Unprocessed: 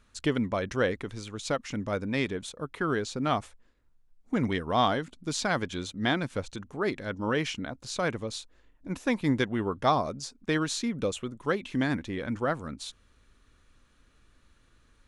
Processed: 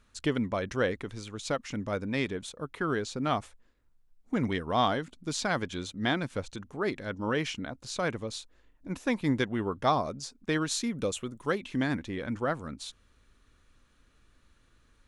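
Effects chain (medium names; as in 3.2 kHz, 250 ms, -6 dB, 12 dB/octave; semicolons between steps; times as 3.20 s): 10.71–11.58 s: treble shelf 8.7 kHz +10.5 dB; trim -1.5 dB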